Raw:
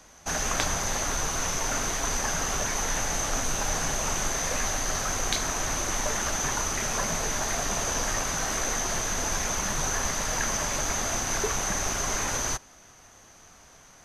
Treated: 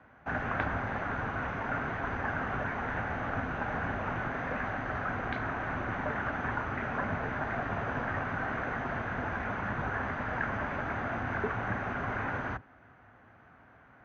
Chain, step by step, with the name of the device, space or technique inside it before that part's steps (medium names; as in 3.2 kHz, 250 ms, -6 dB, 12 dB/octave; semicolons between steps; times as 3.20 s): sub-octave bass pedal (octave divider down 1 oct, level -2 dB; cabinet simulation 62–2200 Hz, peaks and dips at 110 Hz +6 dB, 250 Hz +6 dB, 750 Hz +3 dB, 1.5 kHz +7 dB); trim -4.5 dB